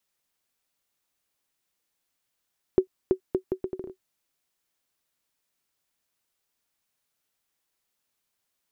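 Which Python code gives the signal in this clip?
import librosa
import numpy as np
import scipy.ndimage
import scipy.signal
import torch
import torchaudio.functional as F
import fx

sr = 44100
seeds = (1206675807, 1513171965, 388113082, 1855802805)

y = fx.bouncing_ball(sr, first_gap_s=0.33, ratio=0.72, hz=375.0, decay_ms=92.0, level_db=-8.5)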